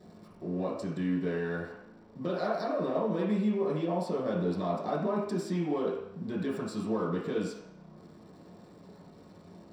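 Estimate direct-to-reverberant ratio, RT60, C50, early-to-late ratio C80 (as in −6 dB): −6.5 dB, 0.75 s, 2.5 dB, 6.0 dB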